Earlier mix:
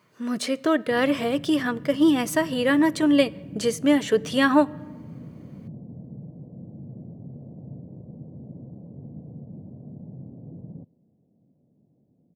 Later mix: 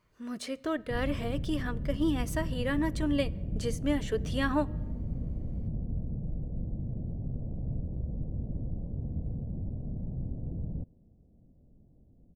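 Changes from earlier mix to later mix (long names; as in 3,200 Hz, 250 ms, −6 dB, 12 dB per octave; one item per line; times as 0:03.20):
speech −10.5 dB
master: remove high-pass filter 130 Hz 24 dB per octave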